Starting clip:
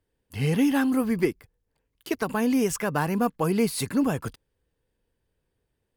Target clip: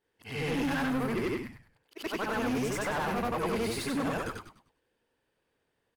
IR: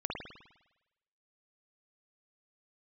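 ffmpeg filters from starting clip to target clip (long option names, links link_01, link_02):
-filter_complex "[0:a]afftfilt=real='re':imag='-im':win_size=8192:overlap=0.75,asplit=2[link_01][link_02];[link_02]highpass=frequency=720:poles=1,volume=25dB,asoftclip=type=tanh:threshold=-16dB[link_03];[link_01][link_03]amix=inputs=2:normalize=0,lowpass=frequency=2900:poles=1,volume=-6dB,asplit=5[link_04][link_05][link_06][link_07][link_08];[link_05]adelay=101,afreqshift=-120,volume=-9dB[link_09];[link_06]adelay=202,afreqshift=-240,volume=-18.9dB[link_10];[link_07]adelay=303,afreqshift=-360,volume=-28.8dB[link_11];[link_08]adelay=404,afreqshift=-480,volume=-38.7dB[link_12];[link_04][link_09][link_10][link_11][link_12]amix=inputs=5:normalize=0,volume=-7.5dB"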